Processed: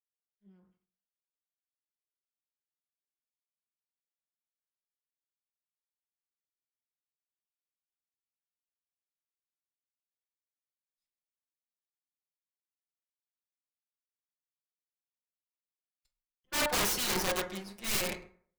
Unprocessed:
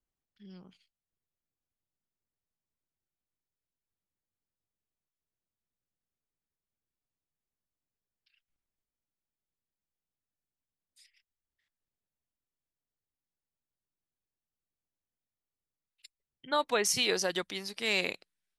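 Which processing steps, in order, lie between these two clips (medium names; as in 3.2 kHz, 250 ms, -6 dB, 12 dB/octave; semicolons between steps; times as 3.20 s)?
comb filter that takes the minimum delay 5.5 ms; on a send at -3 dB: reverberation RT60 0.80 s, pre-delay 7 ms; on the sum: integer overflow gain 24 dB; three bands expanded up and down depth 100%; trim -1.5 dB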